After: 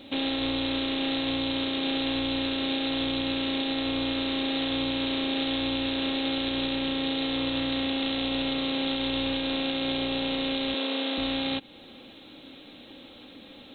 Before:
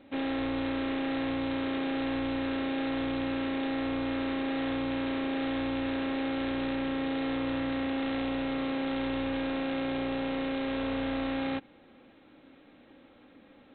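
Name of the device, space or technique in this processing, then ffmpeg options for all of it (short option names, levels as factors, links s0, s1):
over-bright horn tweeter: -filter_complex "[0:a]highshelf=f=2600:t=q:w=1.5:g=11.5,alimiter=level_in=1.26:limit=0.0631:level=0:latency=1:release=244,volume=0.794,asettb=1/sr,asplit=3[s0][s1][s2];[s0]atrim=end=10.744[s3];[s1]atrim=start=10.74:end=11.18,asetpts=PTS-STARTPTS,afade=t=in:d=0.004:c=qsin,afade=t=out:st=0.436:d=0.004:c=qsin,highpass=f=250:w=0.5412,highpass=f=250:w=1.3066[s4];[s2]atrim=start=11.176[s5];[s3][s4]acrossfade=d=0.004:c1=hsin:c2=qsin[s6];[s6][s5]acrossfade=d=0.004:c1=qsin:c2=hsin,volume=2.37"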